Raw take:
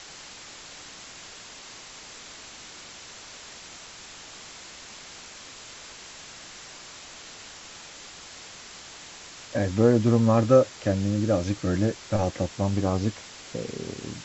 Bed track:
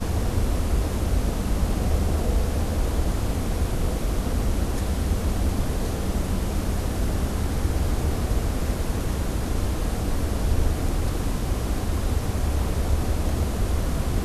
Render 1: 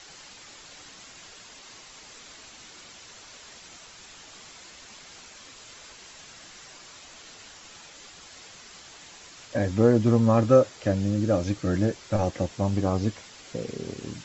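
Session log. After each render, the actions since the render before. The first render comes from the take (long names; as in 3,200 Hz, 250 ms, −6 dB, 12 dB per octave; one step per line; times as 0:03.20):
broadband denoise 6 dB, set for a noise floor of −45 dBFS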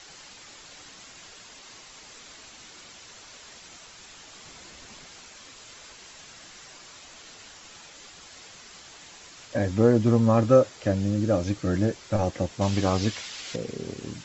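0:04.45–0:05.07: low-shelf EQ 450 Hz +6.5 dB
0:12.61–0:13.56: parametric band 3,500 Hz +11 dB 2.8 octaves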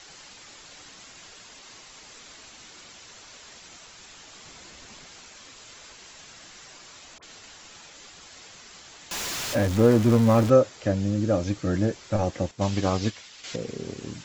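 0:07.18–0:07.63: all-pass dispersion highs, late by 48 ms, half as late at 1,400 Hz
0:09.11–0:10.50: converter with a step at zero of −26.5 dBFS
0:12.51–0:13.44: expander for the loud parts, over −41 dBFS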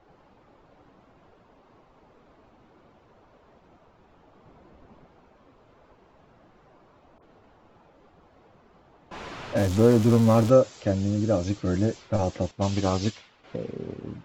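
low-pass that shuts in the quiet parts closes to 720 Hz, open at −20 dBFS
parametric band 1,800 Hz −4 dB 0.76 octaves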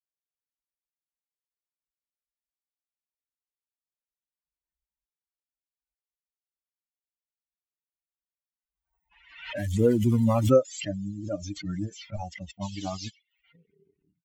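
spectral dynamics exaggerated over time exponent 3
background raised ahead of every attack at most 81 dB per second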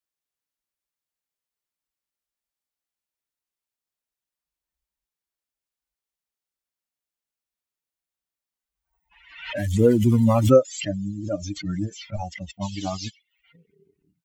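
level +4.5 dB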